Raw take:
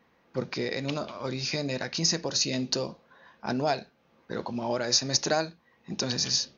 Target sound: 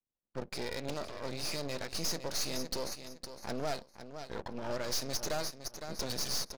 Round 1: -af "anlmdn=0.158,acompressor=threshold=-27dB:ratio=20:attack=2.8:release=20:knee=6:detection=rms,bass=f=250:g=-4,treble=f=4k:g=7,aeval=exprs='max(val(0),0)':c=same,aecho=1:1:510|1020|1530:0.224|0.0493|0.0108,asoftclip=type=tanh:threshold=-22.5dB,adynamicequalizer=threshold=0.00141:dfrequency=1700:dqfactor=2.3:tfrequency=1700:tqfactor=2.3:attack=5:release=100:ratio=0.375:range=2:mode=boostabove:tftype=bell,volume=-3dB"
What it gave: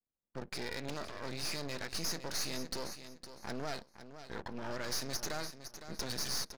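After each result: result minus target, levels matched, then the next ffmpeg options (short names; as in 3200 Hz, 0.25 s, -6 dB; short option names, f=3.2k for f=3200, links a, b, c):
compressor: peak gain reduction +11 dB; 2000 Hz band +3.0 dB
-af "anlmdn=0.158,bass=f=250:g=-4,treble=f=4k:g=7,aeval=exprs='max(val(0),0)':c=same,aecho=1:1:510|1020|1530:0.224|0.0493|0.0108,asoftclip=type=tanh:threshold=-22.5dB,adynamicequalizer=threshold=0.00141:dfrequency=1700:dqfactor=2.3:tfrequency=1700:tqfactor=2.3:attack=5:release=100:ratio=0.375:range=2:mode=boostabove:tftype=bell,volume=-3dB"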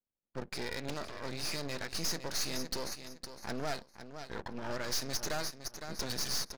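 2000 Hz band +3.0 dB
-af "anlmdn=0.158,bass=f=250:g=-4,treble=f=4k:g=7,aeval=exprs='max(val(0),0)':c=same,aecho=1:1:510|1020|1530:0.224|0.0493|0.0108,asoftclip=type=tanh:threshold=-22.5dB,adynamicequalizer=threshold=0.00141:dfrequency=560:dqfactor=2.3:tfrequency=560:tqfactor=2.3:attack=5:release=100:ratio=0.375:range=2:mode=boostabove:tftype=bell,volume=-3dB"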